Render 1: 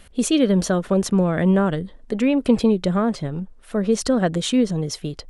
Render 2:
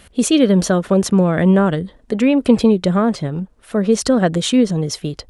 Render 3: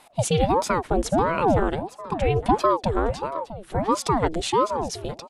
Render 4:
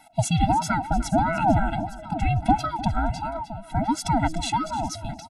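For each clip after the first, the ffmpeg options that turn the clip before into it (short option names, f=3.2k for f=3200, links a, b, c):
-af "highpass=40,volume=4.5dB"
-af "aecho=1:1:863|1726:0.141|0.0254,aeval=exprs='val(0)*sin(2*PI*490*n/s+490*0.7/1.5*sin(2*PI*1.5*n/s))':c=same,volume=-4.5dB"
-af "aecho=1:1:302:0.178,afftfilt=real='re*eq(mod(floor(b*sr/1024/320),2),0)':imag='im*eq(mod(floor(b*sr/1024/320),2),0)':win_size=1024:overlap=0.75,volume=2dB"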